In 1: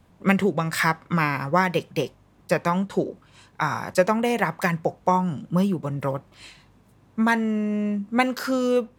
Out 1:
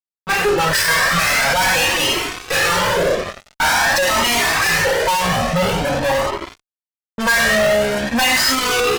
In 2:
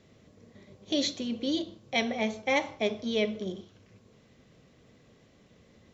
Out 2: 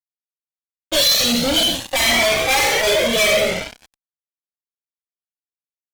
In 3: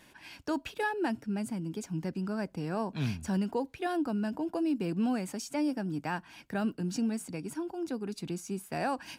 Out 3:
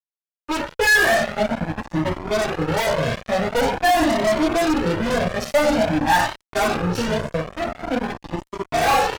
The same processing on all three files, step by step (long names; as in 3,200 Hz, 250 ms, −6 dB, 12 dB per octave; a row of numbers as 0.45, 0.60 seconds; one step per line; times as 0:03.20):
fade in at the beginning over 0.90 s
meter weighting curve ITU-R 468
low-pass that shuts in the quiet parts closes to 350 Hz, open at −18.5 dBFS
parametric band 87 Hz −2.5 dB 2.3 octaves
mains-hum notches 50/100/150/200/250/300/350/400/450 Hz
coupled-rooms reverb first 0.4 s, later 3.1 s, from −28 dB, DRR −4 dB
harmonic and percussive parts rebalanced percussive −13 dB
tube saturation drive 19 dB, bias 0.2
hollow resonant body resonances 640/1,800 Hz, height 8 dB, ringing for 30 ms
echo with shifted repeats 88 ms, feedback 46%, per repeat −67 Hz, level −13 dB
fuzz pedal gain 44 dB, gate −46 dBFS
flanger whose copies keep moving one way rising 0.47 Hz
normalise the peak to −9 dBFS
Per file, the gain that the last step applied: +2.5, +3.0, +3.0 decibels